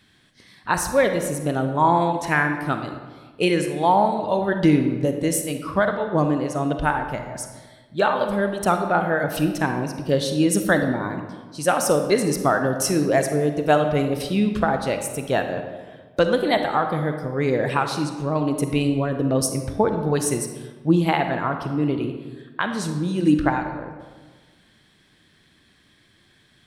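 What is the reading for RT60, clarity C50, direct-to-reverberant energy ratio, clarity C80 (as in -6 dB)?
1.4 s, 7.0 dB, 6.5 dB, 8.5 dB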